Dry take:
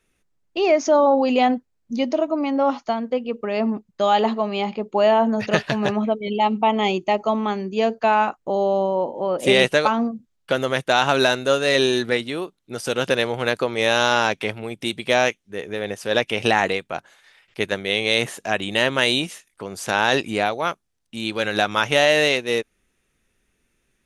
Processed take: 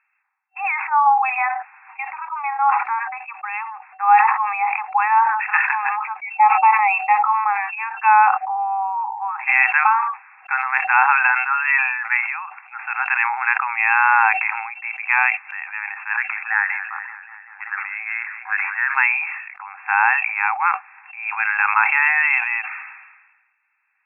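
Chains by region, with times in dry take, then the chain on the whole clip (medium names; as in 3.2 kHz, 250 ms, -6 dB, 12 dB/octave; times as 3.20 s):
16.16–18.95 s: block-companded coder 7-bit + auto-wah 770–1600 Hz, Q 4, up, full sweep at -18.5 dBFS + modulated delay 191 ms, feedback 74%, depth 136 cents, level -16 dB
whole clip: FFT band-pass 760–2700 Hz; loudness maximiser +9 dB; decay stretcher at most 47 dB/s; trim -2.5 dB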